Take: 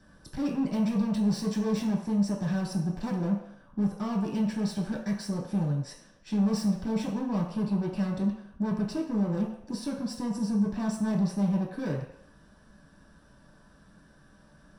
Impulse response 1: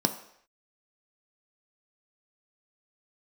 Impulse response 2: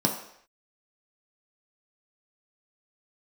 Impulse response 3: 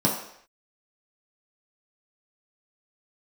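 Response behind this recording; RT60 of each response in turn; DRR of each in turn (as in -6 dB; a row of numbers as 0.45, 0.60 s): 3; not exponential, not exponential, not exponential; 6.0, 0.0, -4.0 dB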